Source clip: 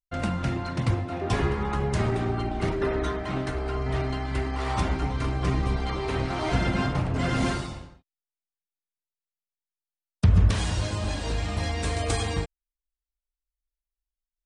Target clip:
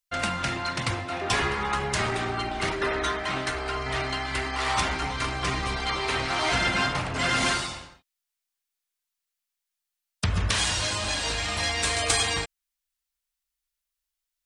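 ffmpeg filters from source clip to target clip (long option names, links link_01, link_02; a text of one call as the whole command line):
ffmpeg -i in.wav -filter_complex "[0:a]asplit=2[link_01][link_02];[link_02]asoftclip=type=tanh:threshold=-27dB,volume=-11.5dB[link_03];[link_01][link_03]amix=inputs=2:normalize=0,tiltshelf=frequency=690:gain=-9" out.wav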